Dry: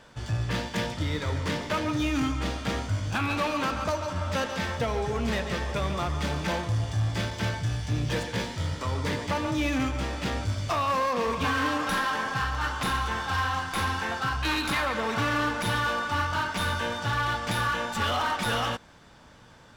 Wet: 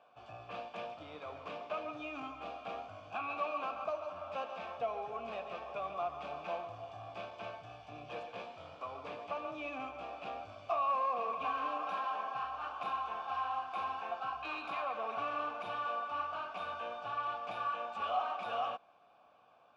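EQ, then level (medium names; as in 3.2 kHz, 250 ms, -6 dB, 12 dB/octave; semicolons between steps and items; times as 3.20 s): vowel filter a; treble shelf 8 kHz -9 dB; +1.0 dB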